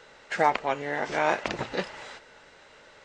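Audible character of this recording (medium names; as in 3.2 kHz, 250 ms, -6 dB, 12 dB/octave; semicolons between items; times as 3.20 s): noise floor -54 dBFS; spectral tilt -2.5 dB/octave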